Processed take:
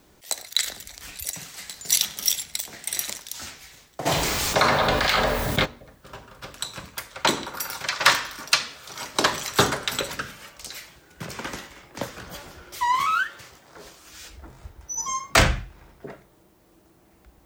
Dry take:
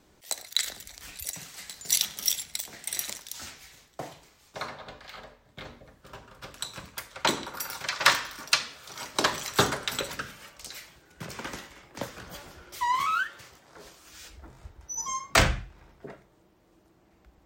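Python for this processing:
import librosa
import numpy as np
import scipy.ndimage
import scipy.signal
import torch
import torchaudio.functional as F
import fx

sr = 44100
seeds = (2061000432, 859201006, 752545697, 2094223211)

p1 = np.clip(10.0 ** (15.0 / 20.0) * x, -1.0, 1.0) / 10.0 ** (15.0 / 20.0)
p2 = x + (p1 * 10.0 ** (-4.0 / 20.0))
p3 = fx.dmg_noise_colour(p2, sr, seeds[0], colour='blue', level_db=-68.0)
y = fx.env_flatten(p3, sr, amount_pct=70, at=(4.05, 5.64), fade=0.02)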